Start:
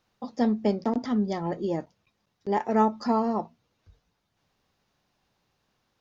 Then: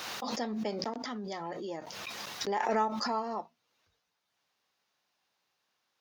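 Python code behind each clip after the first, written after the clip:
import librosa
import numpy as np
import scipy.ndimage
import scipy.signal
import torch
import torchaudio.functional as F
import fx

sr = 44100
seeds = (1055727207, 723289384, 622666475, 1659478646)

y = fx.highpass(x, sr, hz=1100.0, slope=6)
y = fx.pre_swell(y, sr, db_per_s=23.0)
y = F.gain(torch.from_numpy(y), -2.0).numpy()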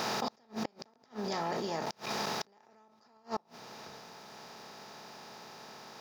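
y = fx.bin_compress(x, sr, power=0.4)
y = fx.peak_eq(y, sr, hz=130.0, db=10.0, octaves=0.62)
y = fx.gate_flip(y, sr, shuts_db=-18.0, range_db=-33)
y = F.gain(torch.from_numpy(y), -4.0).numpy()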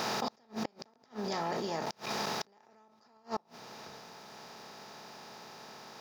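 y = x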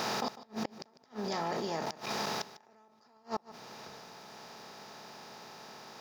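y = x + 10.0 ** (-16.5 / 20.0) * np.pad(x, (int(150 * sr / 1000.0), 0))[:len(x)]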